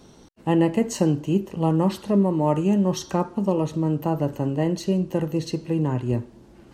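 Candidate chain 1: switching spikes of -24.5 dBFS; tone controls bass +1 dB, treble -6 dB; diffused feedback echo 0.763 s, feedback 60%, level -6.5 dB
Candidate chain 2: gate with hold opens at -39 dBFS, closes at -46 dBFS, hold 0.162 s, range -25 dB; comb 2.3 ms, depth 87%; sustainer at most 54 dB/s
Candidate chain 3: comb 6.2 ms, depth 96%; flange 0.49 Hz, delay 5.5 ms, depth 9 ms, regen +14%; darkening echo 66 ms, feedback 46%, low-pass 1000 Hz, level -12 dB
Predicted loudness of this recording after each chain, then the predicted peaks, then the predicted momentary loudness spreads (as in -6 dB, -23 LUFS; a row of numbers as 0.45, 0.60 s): -22.0, -21.5, -23.0 LUFS; -6.5, -7.5, -6.0 dBFS; 5, 4, 7 LU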